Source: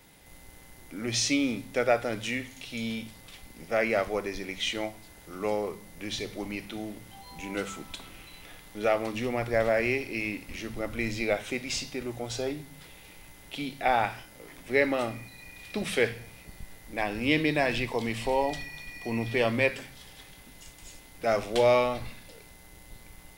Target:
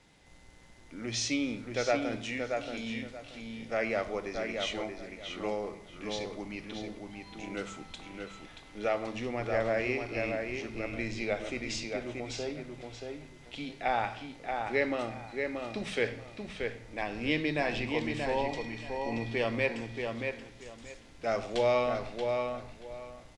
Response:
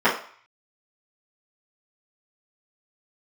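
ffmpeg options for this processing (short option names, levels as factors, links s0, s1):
-filter_complex "[0:a]lowpass=f=7800:w=0.5412,lowpass=f=7800:w=1.3066,asplit=2[s0][s1];[s1]adelay=630,lowpass=f=3900:p=1,volume=0.596,asplit=2[s2][s3];[s3]adelay=630,lowpass=f=3900:p=1,volume=0.23,asplit=2[s4][s5];[s5]adelay=630,lowpass=f=3900:p=1,volume=0.23[s6];[s0][s2][s4][s6]amix=inputs=4:normalize=0,asplit=2[s7][s8];[1:a]atrim=start_sample=2205,asetrate=29547,aresample=44100,adelay=81[s9];[s8][s9]afir=irnorm=-1:irlink=0,volume=0.0106[s10];[s7][s10]amix=inputs=2:normalize=0,volume=0.562"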